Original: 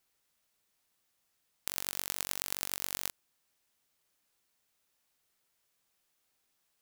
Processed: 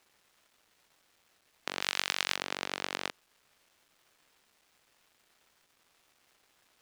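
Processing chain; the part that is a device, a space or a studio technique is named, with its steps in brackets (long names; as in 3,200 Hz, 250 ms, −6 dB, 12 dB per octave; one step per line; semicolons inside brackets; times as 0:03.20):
phone line with mismatched companding (band-pass filter 300–3,300 Hz; mu-law and A-law mismatch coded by mu)
0:01.81–0:02.36: tilt shelving filter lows −8 dB, about 920 Hz
level +7 dB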